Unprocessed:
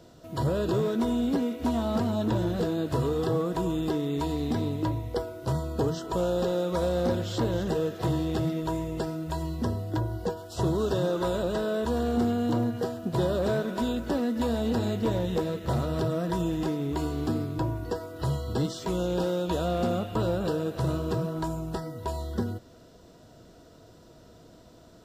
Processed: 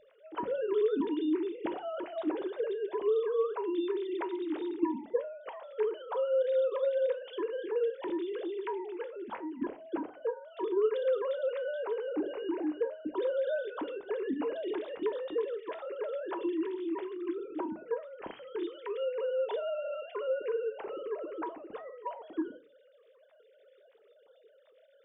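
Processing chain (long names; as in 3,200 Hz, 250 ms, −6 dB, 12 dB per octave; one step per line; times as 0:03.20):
three sine waves on the formant tracks
parametric band 900 Hz −4.5 dB 1.8 octaves
convolution reverb RT60 0.30 s, pre-delay 9 ms, DRR 11 dB
level −4 dB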